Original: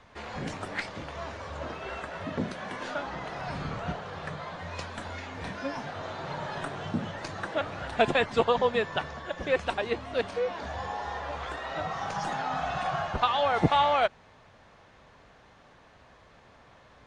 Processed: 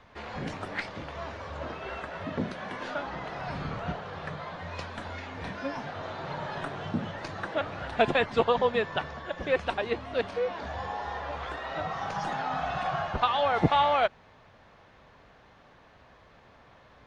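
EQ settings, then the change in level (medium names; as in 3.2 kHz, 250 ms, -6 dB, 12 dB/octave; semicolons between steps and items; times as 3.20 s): peaking EQ 8.2 kHz -8.5 dB 0.89 oct; 0.0 dB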